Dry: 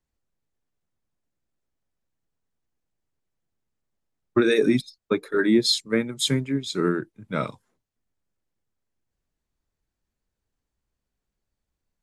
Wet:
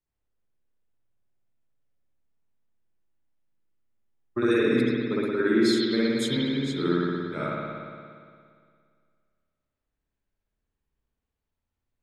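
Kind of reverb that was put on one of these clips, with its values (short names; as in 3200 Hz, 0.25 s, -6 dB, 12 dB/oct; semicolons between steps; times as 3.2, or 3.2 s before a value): spring tank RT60 2.1 s, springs 57 ms, chirp 65 ms, DRR -7.5 dB; gain -9.5 dB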